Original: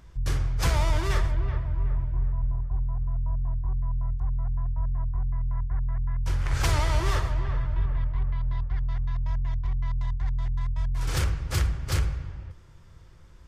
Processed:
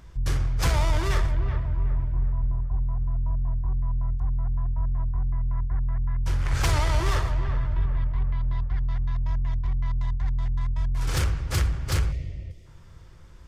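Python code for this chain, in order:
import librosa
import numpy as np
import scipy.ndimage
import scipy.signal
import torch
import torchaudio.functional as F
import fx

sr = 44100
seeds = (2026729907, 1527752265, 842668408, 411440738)

p1 = fx.spec_box(x, sr, start_s=12.11, length_s=0.55, low_hz=730.0, high_hz=1800.0, gain_db=-18)
p2 = np.clip(p1, -10.0 ** (-29.5 / 20.0), 10.0 ** (-29.5 / 20.0))
y = p1 + F.gain(torch.from_numpy(p2), -8.0).numpy()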